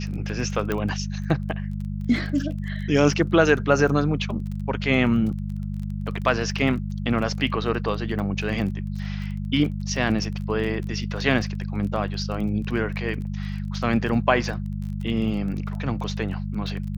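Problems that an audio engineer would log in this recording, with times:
crackle 22/s -32 dBFS
hum 50 Hz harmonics 4 -29 dBFS
0.72 pop -12 dBFS

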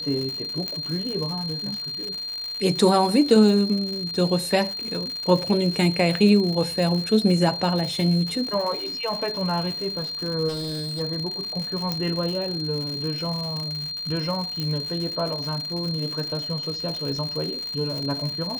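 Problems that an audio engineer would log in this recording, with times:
crackle 160/s -29 dBFS
tone 4200 Hz -29 dBFS
0.68 pop -14 dBFS
10.48–11.01 clipped -26 dBFS
11.92 pop -11 dBFS
14.6 pop -15 dBFS

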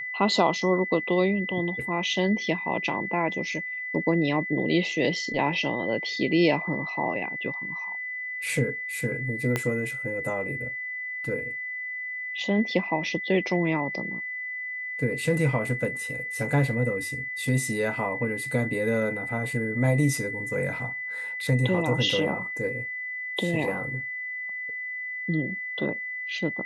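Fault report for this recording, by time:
tone 2000 Hz -31 dBFS
9.56 pop -11 dBFS

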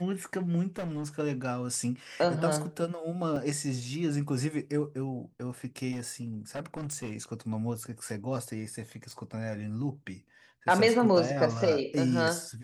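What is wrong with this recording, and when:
0.78–1.08 clipped -31 dBFS
3.36 gap 2.9 ms
5.91–7.12 clipped -31.5 dBFS
9.11 pop

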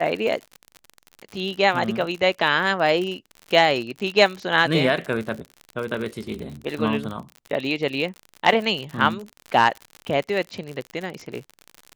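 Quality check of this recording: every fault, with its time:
crackle 56/s -28 dBFS

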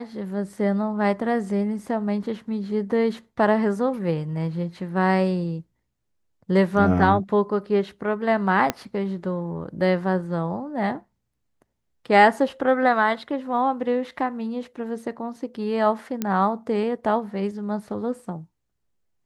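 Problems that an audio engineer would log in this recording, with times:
8.7 pop -7 dBFS
16.22 pop -11 dBFS

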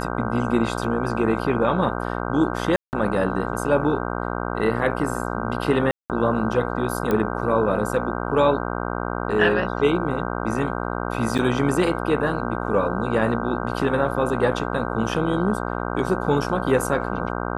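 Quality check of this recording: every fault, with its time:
buzz 60 Hz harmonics 26 -27 dBFS
2.76–2.93 gap 0.169 s
5.91–6.1 gap 0.188 s
7.11 pop -11 dBFS
11.38–11.39 gap 6.8 ms

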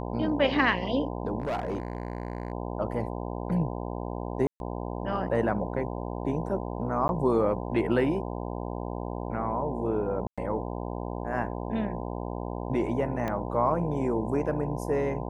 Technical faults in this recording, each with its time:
buzz 60 Hz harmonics 17 -34 dBFS
1.4–2.52 clipped -26 dBFS
4.47–4.6 gap 0.131 s
7.08–7.09 gap 11 ms
10.27–10.38 gap 0.106 s
13.28 pop -18 dBFS

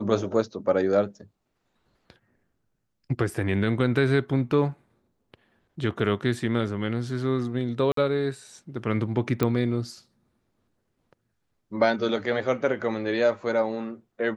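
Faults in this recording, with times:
7.92–7.97 gap 53 ms
9.43 pop -11 dBFS

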